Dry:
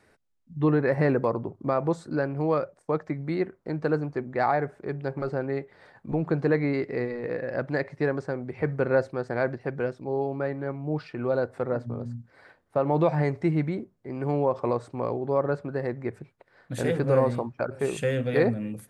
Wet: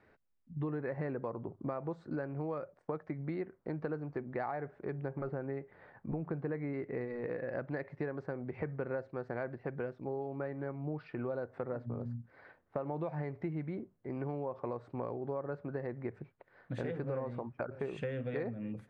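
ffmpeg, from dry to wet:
-filter_complex "[0:a]asettb=1/sr,asplit=3[a][b][c];[a]atrim=end=4.984[d];[b]atrim=start=4.98:end=7.01,asetpts=PTS-STARTPTS,afade=t=in:d=0.004:c=qsin,afade=t=out:st=2.026:d=0.004:c=qsin,bass=f=250:g=2,treble=f=4k:g=-13[e];[c]atrim=start=7.006[f];[d][e]acrossfade=d=0.004:c1=hsin:c2=qsin[g];[g][f]acrossfade=d=0.004:c1=qsin:c2=hsin,lowpass=2.6k,acompressor=threshold=-31dB:ratio=6,volume=-3.5dB"

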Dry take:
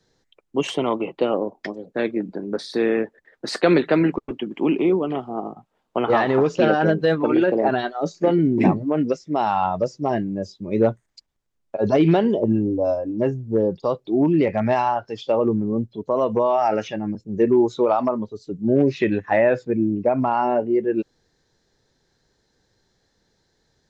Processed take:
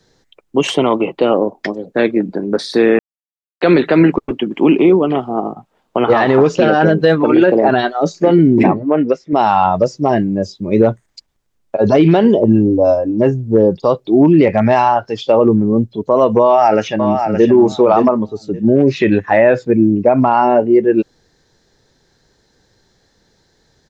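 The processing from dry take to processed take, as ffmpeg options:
-filter_complex "[0:a]asettb=1/sr,asplit=3[a][b][c];[a]atrim=end=8.634[d];[b]atrim=start=8.63:end=9.33,asetpts=PTS-STARTPTS,afade=t=in:d=0.004:c=qsin,afade=t=out:st=0.696:d=0.004:c=qsin,bass=f=250:g=-8,treble=f=4k:g=-14[e];[c]atrim=start=9.326[f];[d][e]acrossfade=d=0.004:c1=hsin:c2=qsin[g];[g][f]acrossfade=d=0.004:c1=qsin:c2=hsin,asplit=2[h][i];[i]afade=t=in:st=16.42:d=0.01,afade=t=out:st=17.51:d=0.01,aecho=0:1:570|1140|1710:0.446684|0.0670025|0.0100504[j];[h][j]amix=inputs=2:normalize=0,asplit=3[k][l][m];[k]atrim=end=2.99,asetpts=PTS-STARTPTS,afade=t=out:st=2.986:d=0.004:c=hsin[n];[l]atrim=start=2.99:end=3.61,asetpts=PTS-STARTPTS,volume=0[o];[m]atrim=start=3.61,asetpts=PTS-STARTPTS,afade=t=in:d=0.004:c=hsin[p];[n][o][p]concat=n=3:v=0:a=1,alimiter=level_in=10.5dB:limit=-1dB:release=50:level=0:latency=1,volume=-1dB"

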